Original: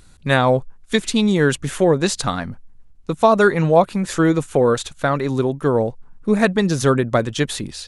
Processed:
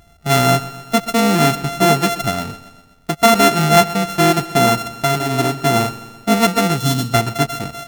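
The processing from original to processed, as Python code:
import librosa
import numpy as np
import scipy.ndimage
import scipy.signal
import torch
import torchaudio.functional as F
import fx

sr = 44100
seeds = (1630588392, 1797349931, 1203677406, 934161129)

y = np.r_[np.sort(x[:len(x) // 64 * 64].reshape(-1, 64), axis=1).ravel(), x[len(x) // 64 * 64:]]
y = fx.spec_box(y, sr, start_s=6.77, length_s=0.35, low_hz=290.0, high_hz=2800.0, gain_db=-11)
y = fx.notch_comb(y, sr, f0_hz=540.0)
y = fx.echo_feedback(y, sr, ms=127, feedback_pct=57, wet_db=-16.0)
y = y * 10.0 ** (2.5 / 20.0)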